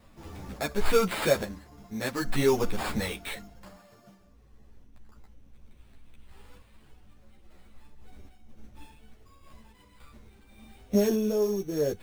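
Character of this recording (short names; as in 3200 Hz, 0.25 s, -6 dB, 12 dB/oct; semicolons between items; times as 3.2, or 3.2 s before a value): random-step tremolo; aliases and images of a low sample rate 6000 Hz, jitter 0%; a shimmering, thickened sound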